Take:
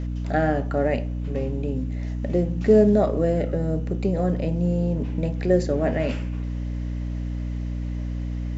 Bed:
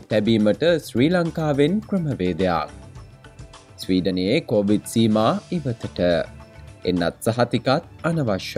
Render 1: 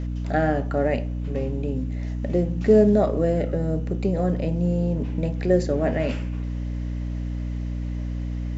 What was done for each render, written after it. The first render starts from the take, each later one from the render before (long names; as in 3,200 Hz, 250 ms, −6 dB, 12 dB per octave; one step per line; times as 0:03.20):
no processing that can be heard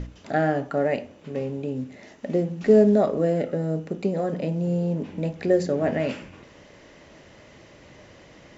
mains-hum notches 60/120/180/240/300 Hz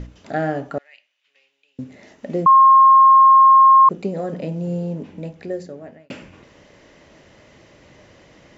0:00.78–0:01.79: four-pole ladder band-pass 3,400 Hz, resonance 30%
0:02.46–0:03.89: beep over 1,070 Hz −6.5 dBFS
0:04.76–0:06.10: fade out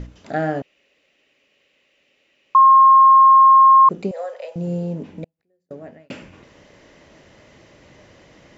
0:00.62–0:02.55: fill with room tone
0:04.11–0:04.56: elliptic high-pass filter 520 Hz, stop band 50 dB
0:05.24–0:05.71: gate with flip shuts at −35 dBFS, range −41 dB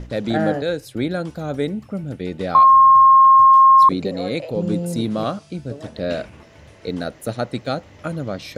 mix in bed −5 dB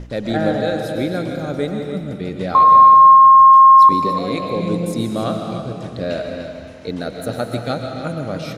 single-tap delay 296 ms −10.5 dB
comb and all-pass reverb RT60 1.9 s, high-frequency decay 0.9×, pre-delay 85 ms, DRR 4 dB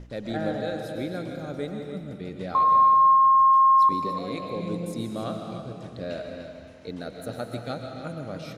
level −10 dB